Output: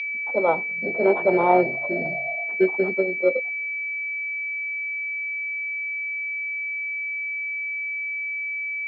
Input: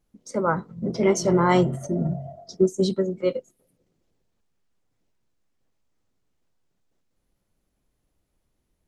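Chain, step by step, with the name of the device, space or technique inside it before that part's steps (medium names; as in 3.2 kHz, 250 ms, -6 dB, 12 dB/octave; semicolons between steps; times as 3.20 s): toy sound module (decimation joined by straight lines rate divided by 6×; class-D stage that switches slowly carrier 2.3 kHz; cabinet simulation 530–4200 Hz, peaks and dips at 720 Hz +4 dB, 1.1 kHz -8 dB, 1.6 kHz -8 dB, 2.3 kHz -5 dB); trim +7.5 dB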